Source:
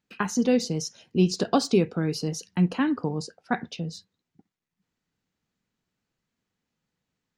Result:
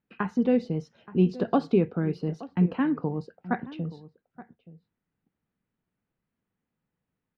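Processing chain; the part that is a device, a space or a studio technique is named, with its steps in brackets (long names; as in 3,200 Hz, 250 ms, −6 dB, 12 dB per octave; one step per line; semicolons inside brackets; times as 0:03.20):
shout across a valley (high-frequency loss of the air 500 metres; slap from a distant wall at 150 metres, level −17 dB)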